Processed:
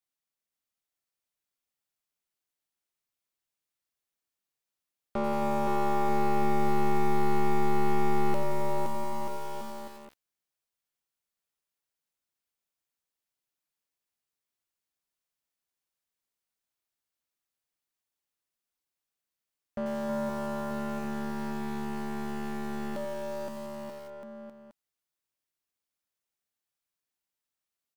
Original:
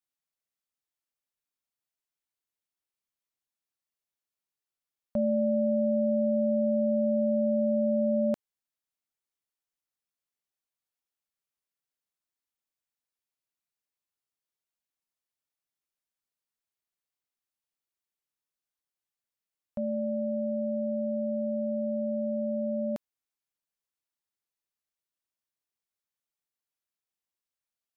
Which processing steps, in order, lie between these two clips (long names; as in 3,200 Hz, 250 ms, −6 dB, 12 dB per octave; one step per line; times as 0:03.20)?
wavefolder on the positive side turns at −28.5 dBFS
0:20.09–0:20.99: leveller curve on the samples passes 1
bouncing-ball delay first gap 520 ms, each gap 0.8×, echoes 5
feedback echo at a low word length 88 ms, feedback 80%, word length 7 bits, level −10 dB